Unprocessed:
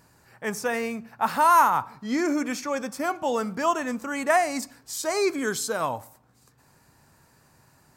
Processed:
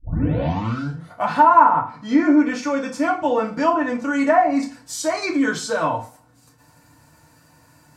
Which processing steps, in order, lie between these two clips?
tape start-up on the opening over 1.36 s; comb of notches 410 Hz; low-pass that closes with the level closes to 1.3 kHz, closed at -19.5 dBFS; FDN reverb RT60 0.35 s, low-frequency decay 0.95×, high-frequency decay 0.95×, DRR -0.5 dB; trim +3.5 dB

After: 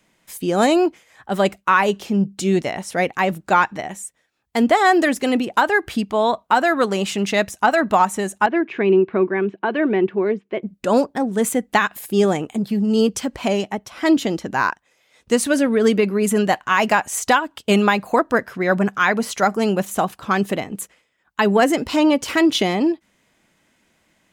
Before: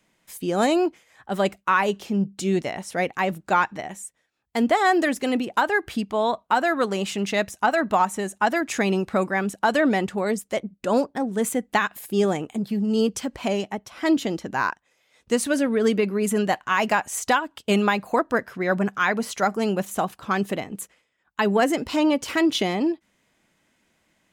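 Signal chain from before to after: 8.46–10.63 s: cabinet simulation 190–2500 Hz, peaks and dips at 260 Hz -7 dB, 370 Hz +10 dB, 550 Hz -9 dB, 800 Hz -9 dB, 1.3 kHz -8 dB, 1.9 kHz -6 dB; trim +4.5 dB

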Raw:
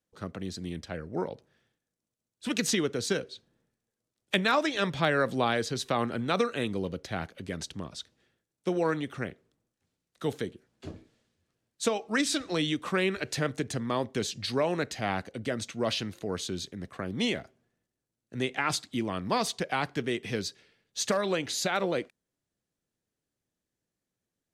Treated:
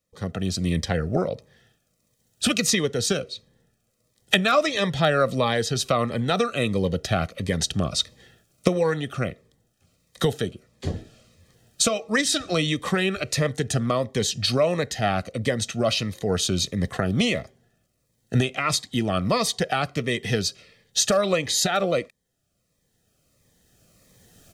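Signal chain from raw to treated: recorder AGC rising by 11 dB/s; comb 1.6 ms, depth 46%; Shepard-style phaser falling 1.5 Hz; trim +6 dB

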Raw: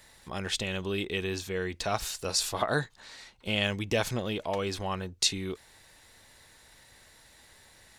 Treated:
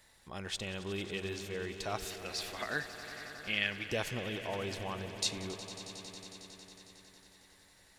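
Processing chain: 2.10–3.90 s: graphic EQ 125/500/1000/2000/8000 Hz -9/-4/-8/+11/-11 dB; echo with a slow build-up 91 ms, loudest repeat 5, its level -16 dB; trim -7.5 dB

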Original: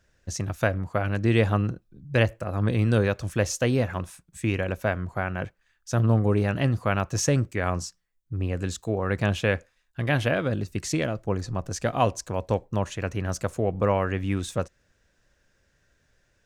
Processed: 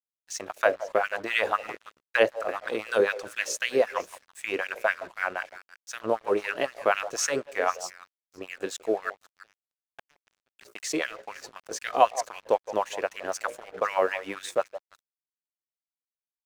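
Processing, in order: bass shelf 130 Hz -5.5 dB; hum notches 60/120/180/240/300/360/420/480/540/600 Hz; 9.09–10.59 s: inverted gate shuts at -26 dBFS, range -32 dB; LFO high-pass sine 3.9 Hz 400–2300 Hz; repeats whose band climbs or falls 167 ms, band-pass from 700 Hz, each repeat 1.4 oct, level -11 dB; crossover distortion -48 dBFS

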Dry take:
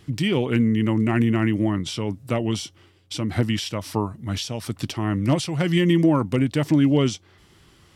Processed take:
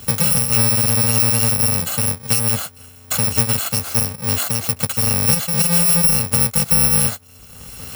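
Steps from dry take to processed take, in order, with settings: bit-reversed sample order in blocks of 128 samples; three bands compressed up and down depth 70%; trim +4 dB

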